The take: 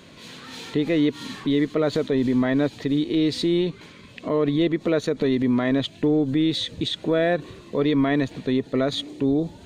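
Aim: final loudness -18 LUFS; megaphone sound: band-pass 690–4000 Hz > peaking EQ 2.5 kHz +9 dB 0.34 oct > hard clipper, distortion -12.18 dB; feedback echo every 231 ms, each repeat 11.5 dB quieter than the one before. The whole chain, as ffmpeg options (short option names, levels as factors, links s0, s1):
-af "highpass=690,lowpass=4000,equalizer=f=2500:t=o:w=0.34:g=9,aecho=1:1:231|462|693:0.266|0.0718|0.0194,asoftclip=type=hard:threshold=0.0596,volume=4.73"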